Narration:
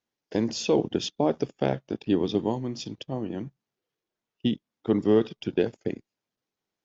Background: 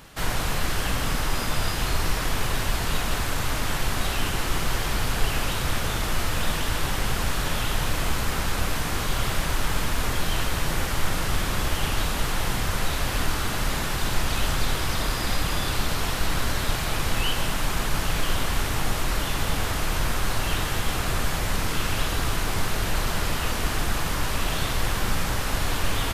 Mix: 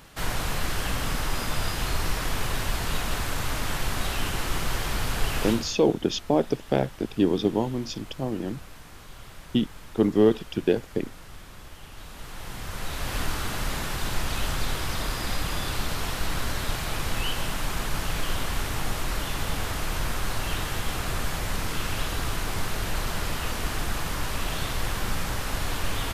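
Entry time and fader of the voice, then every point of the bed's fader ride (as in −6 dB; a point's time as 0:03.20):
5.10 s, +2.0 dB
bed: 0:05.50 −2.5 dB
0:05.77 −19.5 dB
0:11.88 −19.5 dB
0:13.16 −3.5 dB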